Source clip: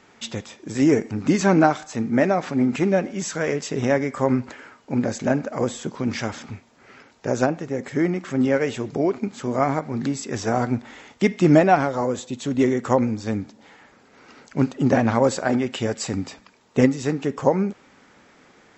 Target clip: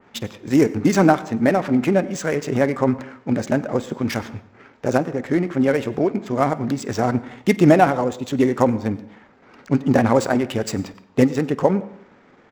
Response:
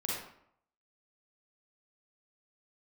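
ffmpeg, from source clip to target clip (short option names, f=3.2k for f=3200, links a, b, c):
-filter_complex "[0:a]adynamicsmooth=sensitivity=6:basefreq=2.3k,crystalizer=i=1:c=0,atempo=1.5,asplit=2[a][b];[1:a]atrim=start_sample=2205,adelay=51[c];[b][c]afir=irnorm=-1:irlink=0,volume=-20.5dB[d];[a][d]amix=inputs=2:normalize=0,adynamicequalizer=threshold=0.0112:dfrequency=2500:dqfactor=0.7:tfrequency=2500:tqfactor=0.7:attack=5:release=100:ratio=0.375:range=2:mode=cutabove:tftype=highshelf,volume=2.5dB"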